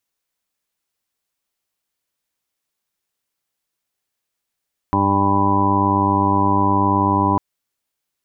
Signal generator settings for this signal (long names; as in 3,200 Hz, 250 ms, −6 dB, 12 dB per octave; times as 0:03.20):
steady harmonic partials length 2.45 s, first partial 99.1 Hz, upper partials −1/1.5/−5.5/−16.5/−8/−18.5/−2.5/−6.5/5/−12.5 dB, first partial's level −22 dB